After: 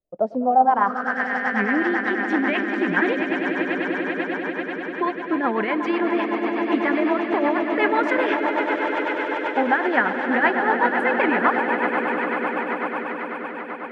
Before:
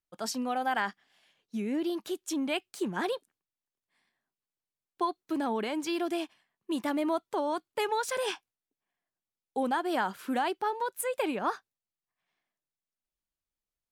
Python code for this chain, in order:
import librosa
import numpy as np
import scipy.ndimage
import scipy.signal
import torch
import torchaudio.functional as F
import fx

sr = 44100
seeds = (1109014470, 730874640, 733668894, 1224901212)

y = fx.echo_swell(x, sr, ms=98, loudest=8, wet_db=-10.5)
y = fx.rotary(y, sr, hz=8.0)
y = fx.filter_sweep_lowpass(y, sr, from_hz=600.0, to_hz=1900.0, start_s=0.38, end_s=1.24, q=4.3)
y = y * 10.0 ** (8.5 / 20.0)